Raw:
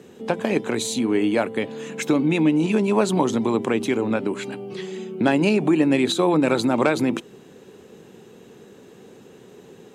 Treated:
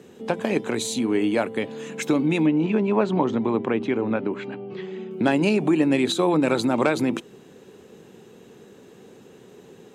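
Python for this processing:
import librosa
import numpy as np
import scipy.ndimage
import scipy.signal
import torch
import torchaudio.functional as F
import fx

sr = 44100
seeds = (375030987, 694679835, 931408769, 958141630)

y = fx.lowpass(x, sr, hz=2600.0, slope=12, at=(2.46, 5.11))
y = y * librosa.db_to_amplitude(-1.5)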